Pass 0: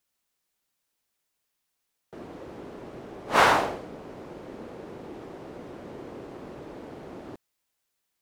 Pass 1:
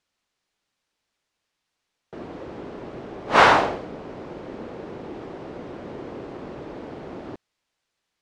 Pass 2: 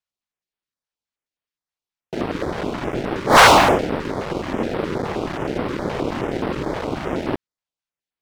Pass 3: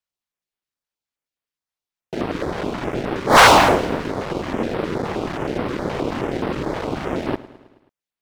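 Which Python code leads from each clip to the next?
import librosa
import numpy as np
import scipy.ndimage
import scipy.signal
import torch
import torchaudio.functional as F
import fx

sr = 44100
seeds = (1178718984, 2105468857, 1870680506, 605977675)

y1 = scipy.signal.sosfilt(scipy.signal.butter(2, 5400.0, 'lowpass', fs=sr, output='sos'), x)
y1 = F.gain(torch.from_numpy(y1), 5.0).numpy()
y2 = fx.leveller(y1, sr, passes=5)
y2 = fx.filter_held_notch(y2, sr, hz=9.5, low_hz=290.0, high_hz=6700.0)
y2 = F.gain(torch.from_numpy(y2), -3.5).numpy()
y3 = fx.echo_feedback(y2, sr, ms=107, feedback_pct=58, wet_db=-18)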